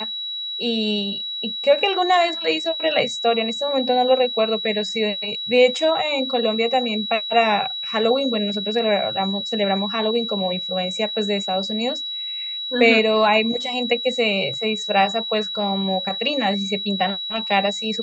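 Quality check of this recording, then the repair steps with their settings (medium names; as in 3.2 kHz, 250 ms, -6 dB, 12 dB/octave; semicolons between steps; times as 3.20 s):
whine 3.9 kHz -26 dBFS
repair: band-stop 3.9 kHz, Q 30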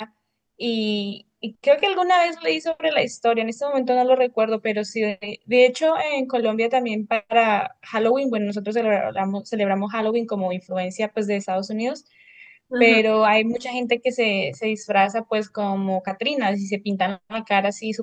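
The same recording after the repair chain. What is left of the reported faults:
nothing left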